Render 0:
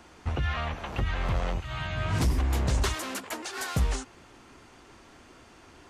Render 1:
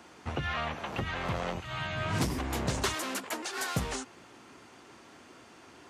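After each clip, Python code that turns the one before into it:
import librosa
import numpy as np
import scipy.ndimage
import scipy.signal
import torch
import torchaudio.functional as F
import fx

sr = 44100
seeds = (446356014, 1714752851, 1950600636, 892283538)

y = scipy.signal.sosfilt(scipy.signal.butter(2, 130.0, 'highpass', fs=sr, output='sos'), x)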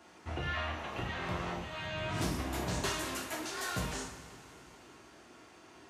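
y = fx.rev_double_slope(x, sr, seeds[0], early_s=0.56, late_s=3.5, knee_db=-17, drr_db=-3.5)
y = y * 10.0 ** (-8.0 / 20.0)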